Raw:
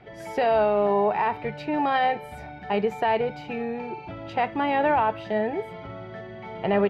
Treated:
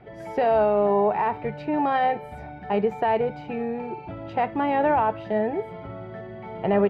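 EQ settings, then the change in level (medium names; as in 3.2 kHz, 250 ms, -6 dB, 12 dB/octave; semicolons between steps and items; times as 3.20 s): treble shelf 2.2 kHz -11.5 dB; +2.0 dB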